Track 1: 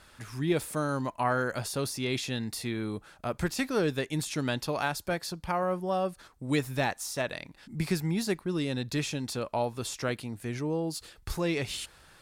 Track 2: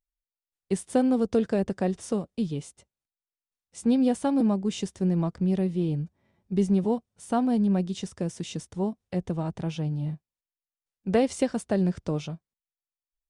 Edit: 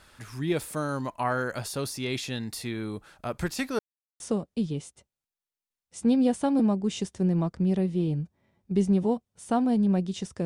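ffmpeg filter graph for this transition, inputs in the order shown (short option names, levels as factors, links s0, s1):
-filter_complex "[0:a]apad=whole_dur=10.45,atrim=end=10.45,asplit=2[s0][s1];[s0]atrim=end=3.79,asetpts=PTS-STARTPTS,afade=t=out:st=3.786:d=0.004:c=hsin[s2];[s1]atrim=start=3.79:end=4.2,asetpts=PTS-STARTPTS,volume=0[s3];[1:a]atrim=start=2.01:end=8.26,asetpts=PTS-STARTPTS,afade=t=in:d=0.004:c=hsin[s4];[s2][s3][s4]concat=n=3:v=0:a=1"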